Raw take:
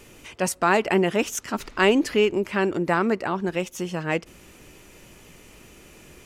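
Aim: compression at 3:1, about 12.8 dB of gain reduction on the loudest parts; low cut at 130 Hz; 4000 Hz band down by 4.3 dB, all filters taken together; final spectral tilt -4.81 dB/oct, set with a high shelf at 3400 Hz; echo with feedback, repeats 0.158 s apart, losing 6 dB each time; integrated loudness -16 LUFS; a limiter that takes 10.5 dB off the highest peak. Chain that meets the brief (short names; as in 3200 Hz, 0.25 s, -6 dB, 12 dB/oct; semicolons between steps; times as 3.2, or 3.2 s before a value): HPF 130 Hz; high shelf 3400 Hz -5.5 dB; bell 4000 Hz -3 dB; compressor 3:1, threshold -33 dBFS; limiter -27 dBFS; feedback echo 0.158 s, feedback 50%, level -6 dB; gain +21 dB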